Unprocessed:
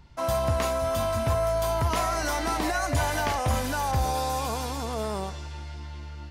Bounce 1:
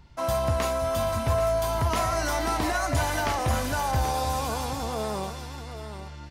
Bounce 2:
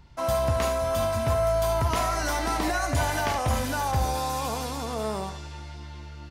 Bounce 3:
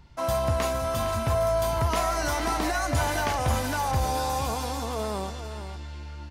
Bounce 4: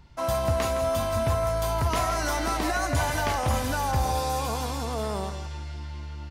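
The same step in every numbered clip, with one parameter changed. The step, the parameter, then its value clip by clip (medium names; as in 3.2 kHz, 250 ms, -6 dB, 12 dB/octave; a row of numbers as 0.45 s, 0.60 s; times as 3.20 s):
delay, time: 783 ms, 74 ms, 460 ms, 164 ms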